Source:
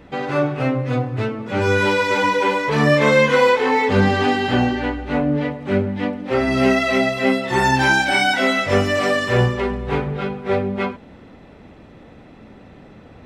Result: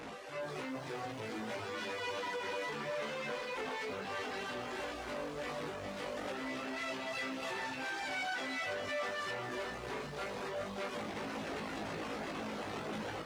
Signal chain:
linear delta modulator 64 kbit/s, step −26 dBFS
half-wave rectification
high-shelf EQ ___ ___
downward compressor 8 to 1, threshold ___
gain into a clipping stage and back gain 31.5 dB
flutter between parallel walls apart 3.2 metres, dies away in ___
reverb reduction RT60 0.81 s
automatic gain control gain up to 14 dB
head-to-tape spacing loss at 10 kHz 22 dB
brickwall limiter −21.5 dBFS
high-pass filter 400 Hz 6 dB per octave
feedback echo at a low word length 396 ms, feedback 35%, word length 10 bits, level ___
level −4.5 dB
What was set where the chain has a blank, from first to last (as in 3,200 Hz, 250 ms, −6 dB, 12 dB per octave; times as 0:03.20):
5,000 Hz, +9 dB, −27 dBFS, 0.25 s, −7 dB